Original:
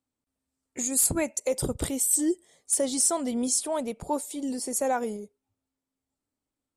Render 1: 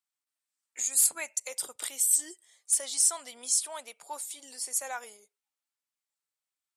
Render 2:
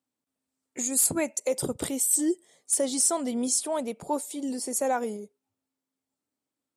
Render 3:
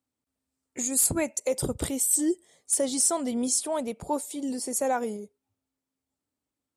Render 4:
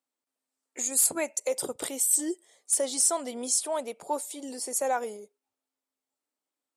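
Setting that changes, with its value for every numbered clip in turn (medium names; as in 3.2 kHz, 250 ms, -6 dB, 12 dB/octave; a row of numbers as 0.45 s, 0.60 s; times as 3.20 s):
high-pass, cutoff frequency: 1.4 kHz, 150 Hz, 52 Hz, 440 Hz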